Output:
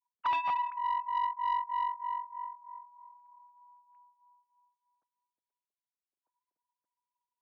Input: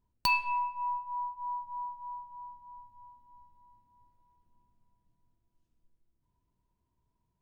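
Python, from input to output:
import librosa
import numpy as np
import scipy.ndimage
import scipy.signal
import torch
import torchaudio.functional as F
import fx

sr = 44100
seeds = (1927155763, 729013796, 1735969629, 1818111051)

y = fx.sine_speech(x, sr)
y = fx.cheby_harmonics(y, sr, harmonics=(5,), levels_db=(-20,), full_scale_db=-20.0)
y = fx.env_lowpass_down(y, sr, base_hz=2100.0, full_db=-25.5)
y = fx.doppler_dist(y, sr, depth_ms=0.19)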